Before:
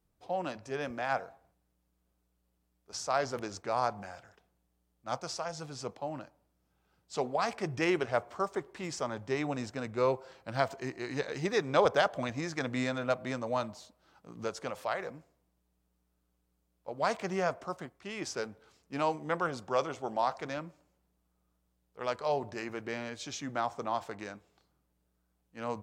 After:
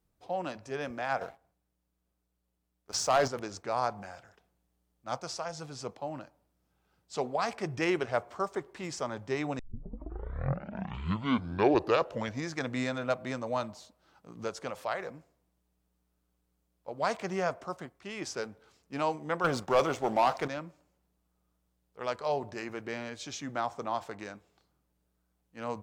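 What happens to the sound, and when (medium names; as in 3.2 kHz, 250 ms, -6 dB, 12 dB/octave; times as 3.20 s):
1.21–3.28 s: waveshaping leveller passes 2
9.59 s: tape start 2.94 s
19.44–20.48 s: waveshaping leveller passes 2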